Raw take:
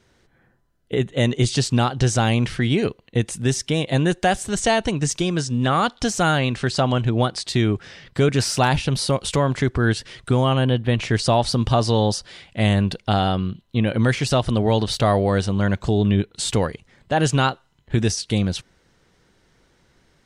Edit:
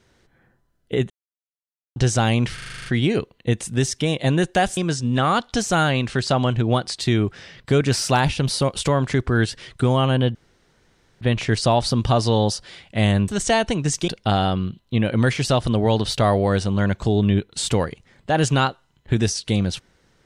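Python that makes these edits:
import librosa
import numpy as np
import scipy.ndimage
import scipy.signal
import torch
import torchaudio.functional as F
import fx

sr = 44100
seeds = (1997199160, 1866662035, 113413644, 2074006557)

y = fx.edit(x, sr, fx.silence(start_s=1.1, length_s=0.86),
    fx.stutter(start_s=2.54, slice_s=0.04, count=9),
    fx.move(start_s=4.45, length_s=0.8, to_s=12.9),
    fx.insert_room_tone(at_s=10.83, length_s=0.86), tone=tone)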